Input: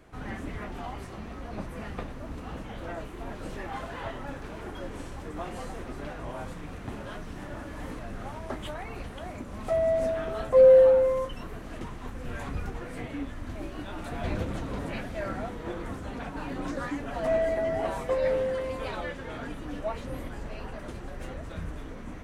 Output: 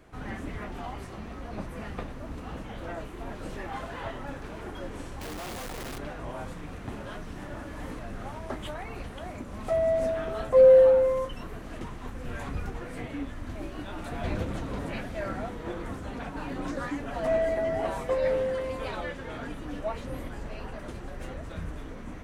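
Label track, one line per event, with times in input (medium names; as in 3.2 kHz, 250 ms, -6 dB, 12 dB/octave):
5.210000	5.980000	one-bit comparator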